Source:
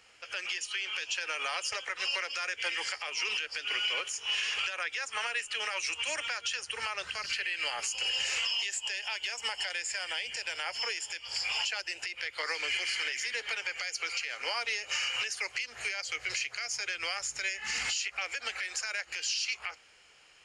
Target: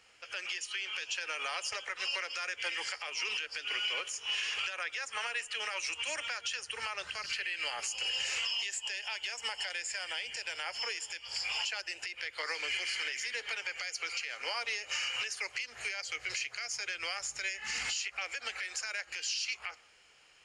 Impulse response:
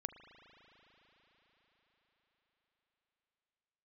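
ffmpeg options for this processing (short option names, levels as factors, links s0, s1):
-filter_complex "[0:a]asplit=2[s0][s1];[1:a]atrim=start_sample=2205,afade=t=out:st=0.14:d=0.01,atrim=end_sample=6615,asetrate=22932,aresample=44100[s2];[s1][s2]afir=irnorm=-1:irlink=0,volume=0.562[s3];[s0][s3]amix=inputs=2:normalize=0,volume=0.473"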